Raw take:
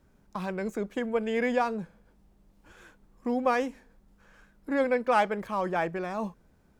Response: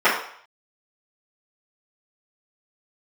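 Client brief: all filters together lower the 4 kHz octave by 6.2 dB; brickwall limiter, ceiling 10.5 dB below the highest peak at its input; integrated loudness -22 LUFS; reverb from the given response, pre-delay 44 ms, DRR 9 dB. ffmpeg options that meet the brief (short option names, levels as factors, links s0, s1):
-filter_complex "[0:a]equalizer=f=4000:t=o:g=-9,alimiter=limit=0.0708:level=0:latency=1,asplit=2[s0][s1];[1:a]atrim=start_sample=2205,adelay=44[s2];[s1][s2]afir=irnorm=-1:irlink=0,volume=0.0251[s3];[s0][s3]amix=inputs=2:normalize=0,volume=3.55"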